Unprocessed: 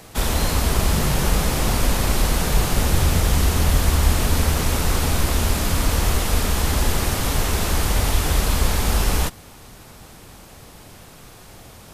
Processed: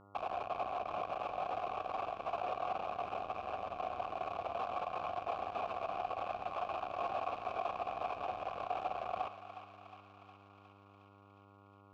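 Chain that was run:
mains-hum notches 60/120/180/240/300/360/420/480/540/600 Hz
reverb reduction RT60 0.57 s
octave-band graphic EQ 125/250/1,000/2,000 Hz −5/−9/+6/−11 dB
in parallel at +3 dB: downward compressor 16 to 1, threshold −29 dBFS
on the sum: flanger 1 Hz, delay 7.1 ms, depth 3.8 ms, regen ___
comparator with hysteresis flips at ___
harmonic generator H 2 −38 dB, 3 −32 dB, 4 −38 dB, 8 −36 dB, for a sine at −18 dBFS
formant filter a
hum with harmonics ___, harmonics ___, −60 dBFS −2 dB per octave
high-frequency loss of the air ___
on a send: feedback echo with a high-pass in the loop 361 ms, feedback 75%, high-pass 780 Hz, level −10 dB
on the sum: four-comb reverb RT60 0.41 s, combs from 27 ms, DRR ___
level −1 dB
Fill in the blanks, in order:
−82%, −27.5 dBFS, 100 Hz, 14, 110 metres, 14.5 dB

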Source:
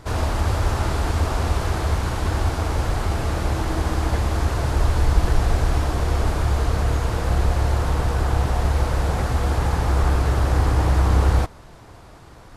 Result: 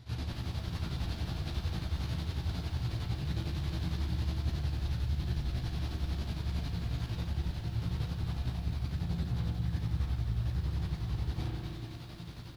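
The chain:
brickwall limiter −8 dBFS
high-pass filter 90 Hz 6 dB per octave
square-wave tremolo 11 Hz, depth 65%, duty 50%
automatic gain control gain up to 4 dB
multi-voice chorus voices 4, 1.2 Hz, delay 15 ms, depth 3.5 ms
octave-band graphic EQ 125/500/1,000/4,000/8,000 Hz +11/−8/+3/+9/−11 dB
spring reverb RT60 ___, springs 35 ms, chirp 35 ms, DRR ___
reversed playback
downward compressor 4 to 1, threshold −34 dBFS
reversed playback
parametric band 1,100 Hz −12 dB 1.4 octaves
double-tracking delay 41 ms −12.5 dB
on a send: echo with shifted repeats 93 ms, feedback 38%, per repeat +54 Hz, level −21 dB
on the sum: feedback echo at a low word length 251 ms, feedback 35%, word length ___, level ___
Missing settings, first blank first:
1.1 s, 9 dB, 10 bits, −7 dB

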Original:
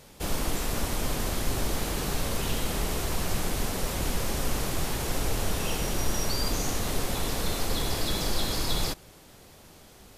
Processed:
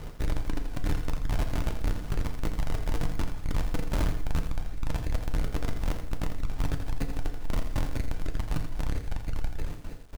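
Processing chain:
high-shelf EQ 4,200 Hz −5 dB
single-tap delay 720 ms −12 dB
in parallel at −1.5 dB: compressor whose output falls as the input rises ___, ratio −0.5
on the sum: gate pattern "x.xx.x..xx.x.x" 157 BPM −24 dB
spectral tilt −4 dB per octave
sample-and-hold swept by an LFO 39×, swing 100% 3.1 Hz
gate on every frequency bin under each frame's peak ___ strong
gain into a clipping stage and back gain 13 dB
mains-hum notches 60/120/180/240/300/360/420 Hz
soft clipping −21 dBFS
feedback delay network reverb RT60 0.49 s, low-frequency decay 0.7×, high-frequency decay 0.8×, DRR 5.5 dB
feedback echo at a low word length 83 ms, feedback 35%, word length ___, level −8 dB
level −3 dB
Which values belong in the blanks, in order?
−29 dBFS, −60 dB, 8 bits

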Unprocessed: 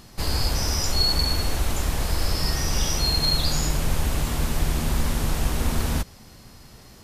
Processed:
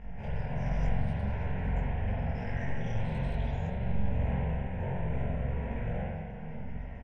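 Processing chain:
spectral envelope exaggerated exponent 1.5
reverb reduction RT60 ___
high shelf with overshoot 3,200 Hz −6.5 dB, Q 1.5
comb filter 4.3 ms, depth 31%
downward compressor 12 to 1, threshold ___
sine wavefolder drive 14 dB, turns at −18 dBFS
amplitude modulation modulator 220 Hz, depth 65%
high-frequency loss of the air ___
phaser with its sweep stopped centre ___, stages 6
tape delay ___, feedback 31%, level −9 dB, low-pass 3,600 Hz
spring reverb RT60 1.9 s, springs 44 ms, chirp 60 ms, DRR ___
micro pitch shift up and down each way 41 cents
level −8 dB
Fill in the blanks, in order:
0.65 s, −24 dBFS, 190 metres, 1,200 Hz, 583 ms, −7 dB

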